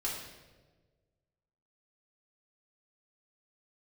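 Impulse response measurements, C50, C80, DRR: 3.0 dB, 5.0 dB, -6.0 dB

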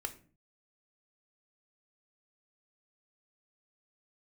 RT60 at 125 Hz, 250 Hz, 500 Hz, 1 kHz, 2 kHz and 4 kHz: 0.65, 0.55, 0.45, 0.35, 0.35, 0.25 s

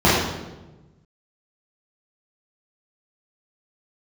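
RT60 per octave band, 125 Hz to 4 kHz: 1.8, 1.4, 1.3, 1.0, 0.85, 0.80 s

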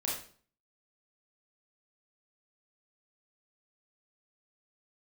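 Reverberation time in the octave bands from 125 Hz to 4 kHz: 0.55, 0.55, 0.50, 0.45, 0.40, 0.40 s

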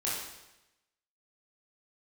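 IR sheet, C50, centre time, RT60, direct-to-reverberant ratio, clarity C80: 0.5 dB, 67 ms, 0.95 s, -7.0 dB, 3.5 dB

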